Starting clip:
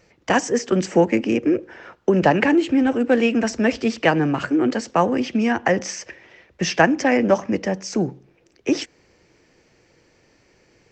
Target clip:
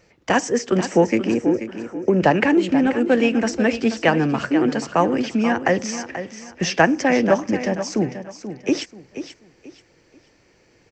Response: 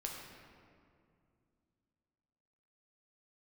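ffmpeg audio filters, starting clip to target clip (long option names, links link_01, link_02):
-filter_complex "[0:a]asettb=1/sr,asplit=3[link_01][link_02][link_03];[link_01]atrim=end=1.324[link_04];[link_02]atrim=start=1.32:end=2.2,asetpts=PTS-STARTPTS,afade=type=in:duration=0.004:curve=qsin,afade=type=out:start_time=0.876:duration=0.004:curve=qsin,equalizer=frequency=3400:width_type=o:width=2:gain=-10.5[link_05];[link_03]atrim=start=2.196[link_06];[link_04][link_05]acrossfade=duration=0.004:curve1=hsin:curve2=qsin[link_07];[link_07][link_06]acrossfade=duration=0.004:curve1=qsin:curve2=hsin,aecho=1:1:484|968|1452:0.282|0.0817|0.0237"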